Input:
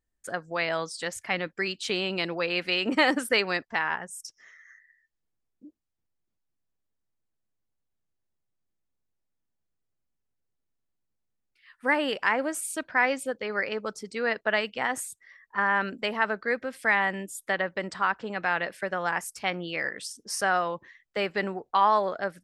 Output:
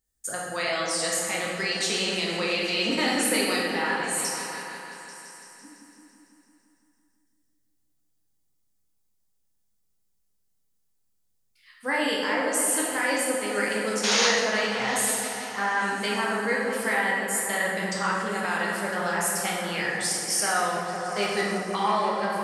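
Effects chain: tone controls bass +1 dB, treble +14 dB; peak limiter -15 dBFS, peak gain reduction 8.5 dB; painted sound noise, 14.03–14.27 s, 420–7000 Hz -22 dBFS; delay with an opening low-pass 168 ms, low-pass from 400 Hz, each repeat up 1 oct, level -3 dB; plate-style reverb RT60 1.4 s, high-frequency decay 0.8×, DRR -4 dB; trim -4 dB

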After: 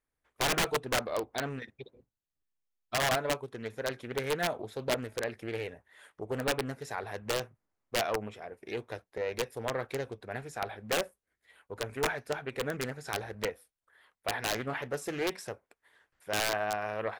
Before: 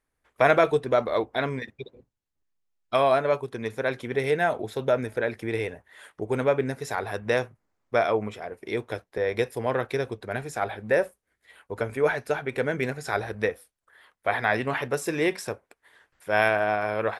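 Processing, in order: integer overflow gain 14 dB; loudspeaker Doppler distortion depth 0.61 ms; trim -7.5 dB

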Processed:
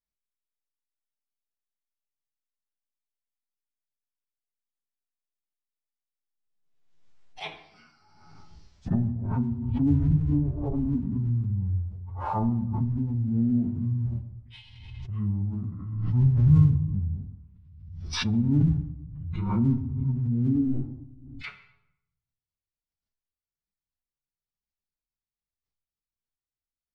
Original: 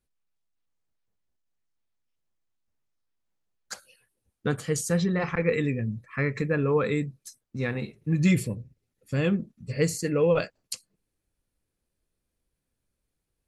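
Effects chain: low-pass that closes with the level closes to 1.8 kHz, closed at -25 dBFS; gate with hold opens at -53 dBFS; low-pass that closes with the level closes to 310 Hz, closed at -24 dBFS; in parallel at -11 dB: crossover distortion -47 dBFS; on the sum: formant-preserving pitch shift +8.5 st; simulated room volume 38 m³, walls mixed, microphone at 0.3 m; speed mistake 15 ips tape played at 7.5 ips; swell ahead of each attack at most 44 dB/s

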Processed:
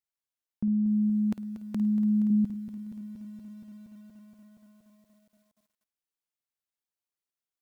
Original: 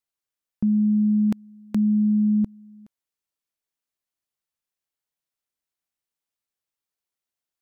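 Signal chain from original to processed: 2.30–2.70 s: FFT filter 120 Hz 0 dB, 200 Hz +5 dB, 390 Hz -7 dB; flutter echo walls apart 9.1 m, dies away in 0.27 s; bit-crushed delay 236 ms, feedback 80%, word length 9-bit, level -12.5 dB; trim -6.5 dB

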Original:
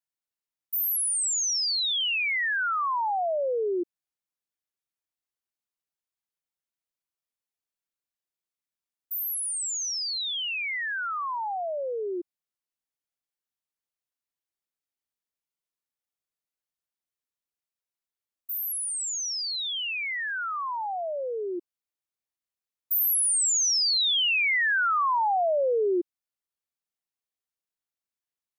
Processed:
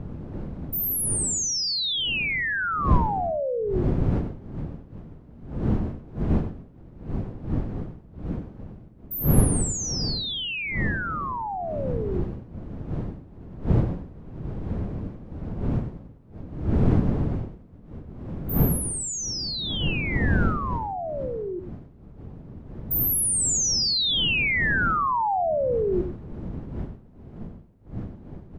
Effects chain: wind noise 190 Hz -29 dBFS; delay 96 ms -10 dB

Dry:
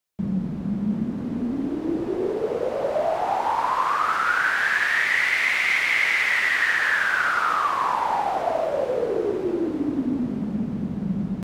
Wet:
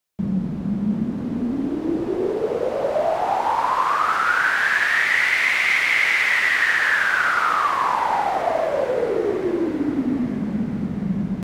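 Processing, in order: thinning echo 849 ms, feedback 63%, high-pass 810 Hz, level -18 dB; trim +2.5 dB

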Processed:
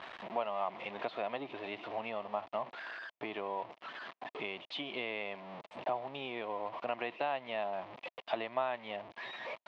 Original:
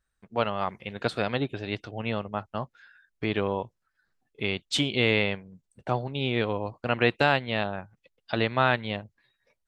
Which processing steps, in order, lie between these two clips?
jump at every zero crossing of -32 dBFS; compression 3:1, threshold -34 dBFS, peak gain reduction 13.5 dB; cabinet simulation 360–3200 Hz, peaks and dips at 460 Hz -4 dB, 670 Hz +8 dB, 1 kHz +6 dB, 1.5 kHz -8 dB; trim -2 dB

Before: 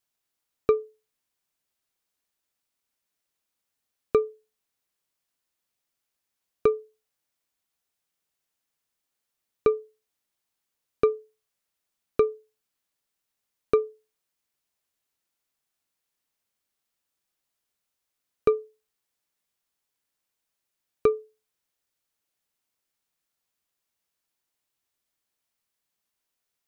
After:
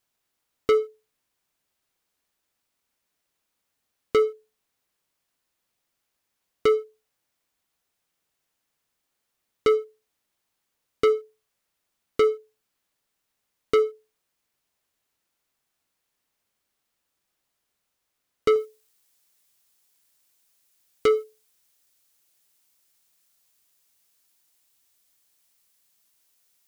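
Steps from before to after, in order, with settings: treble shelf 3.4 kHz -4 dB, from 18.56 s +10 dB; waveshaping leveller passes 1; saturation -24 dBFS, distortion -7 dB; trim +8.5 dB

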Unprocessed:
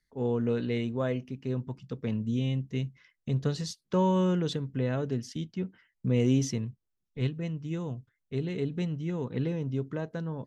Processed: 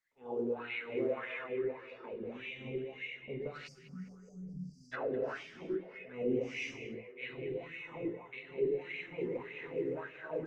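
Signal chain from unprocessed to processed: 1.53–2.21 s: dynamic bell 130 Hz, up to -7 dB, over -45 dBFS, Q 0.77; gated-style reverb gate 450 ms flat, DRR -7.5 dB; 3.67–4.93 s: spectral selection erased 270–4600 Hz; peaking EQ 2.4 kHz +7 dB 0.66 oct; tremolo 3 Hz, depth 36%; wah-wah 1.7 Hz 370–2400 Hz, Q 5; repeats whose band climbs or falls 205 ms, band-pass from 2.5 kHz, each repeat -0.7 oct, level -11 dB; in parallel at +0.5 dB: peak limiter -30 dBFS, peak gain reduction 10 dB; on the sum: trim -5 dB; Opus 20 kbps 48 kHz

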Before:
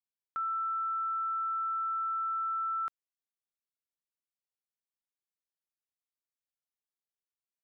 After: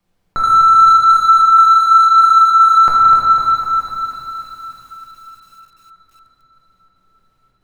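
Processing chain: waveshaping leveller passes 2; trance gate "xxx.xxxxx." 138 bpm -12 dB; on a send: feedback echo behind a high-pass 308 ms, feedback 70%, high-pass 1.4 kHz, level -18 dB; on the sum: flange 0.89 Hz, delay 4.9 ms, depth 3.6 ms, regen +61%; in parallel at -9 dB: hard clipper -40 dBFS, distortion -10 dB; on the sum: dynamic bell 910 Hz, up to +7 dB, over -50 dBFS, Q 1.3; compression 1.5:1, threshold -55 dBFS, peak gain reduction 9.5 dB; tilt EQ -4 dB/octave; simulated room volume 170 m³, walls hard, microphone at 0.83 m; loudness maximiser +35.5 dB; bit-crushed delay 251 ms, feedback 55%, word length 7-bit, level -8 dB; trim -3.5 dB

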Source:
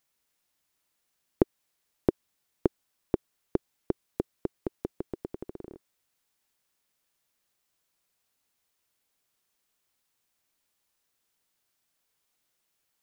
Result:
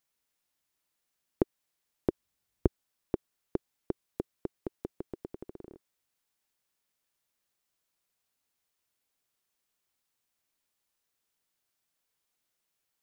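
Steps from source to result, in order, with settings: 2.09–2.66 s: peaking EQ 62 Hz +5 dB -> +15 dB 2.4 oct; trim -4.5 dB

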